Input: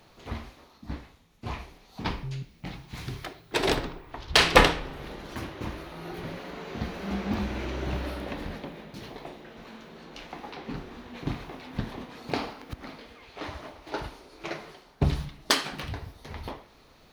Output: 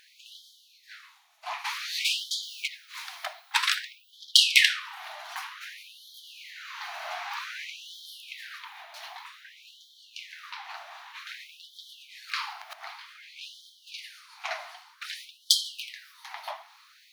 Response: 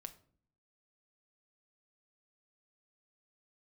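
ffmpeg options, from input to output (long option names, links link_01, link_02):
-filter_complex "[0:a]asplit=3[link_01][link_02][link_03];[link_01]afade=type=out:start_time=1.64:duration=0.02[link_04];[link_02]asplit=2[link_05][link_06];[link_06]highpass=frequency=720:poles=1,volume=28dB,asoftclip=type=tanh:threshold=-17.5dB[link_07];[link_05][link_07]amix=inputs=2:normalize=0,lowpass=frequency=6200:poles=1,volume=-6dB,afade=type=in:start_time=1.64:duration=0.02,afade=type=out:start_time=2.66:duration=0.02[link_08];[link_03]afade=type=in:start_time=2.66:duration=0.02[link_09];[link_04][link_08][link_09]amix=inputs=3:normalize=0,afftfilt=real='re*gte(b*sr/1024,600*pow(3100/600,0.5+0.5*sin(2*PI*0.53*pts/sr)))':imag='im*gte(b*sr/1024,600*pow(3100/600,0.5+0.5*sin(2*PI*0.53*pts/sr)))':win_size=1024:overlap=0.75,volume=4.5dB"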